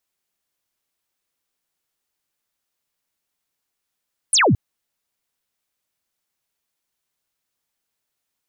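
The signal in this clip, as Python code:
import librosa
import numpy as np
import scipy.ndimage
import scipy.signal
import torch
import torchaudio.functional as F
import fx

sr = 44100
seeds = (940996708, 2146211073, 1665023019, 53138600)

y = fx.laser_zap(sr, level_db=-12.0, start_hz=11000.0, end_hz=82.0, length_s=0.22, wave='sine')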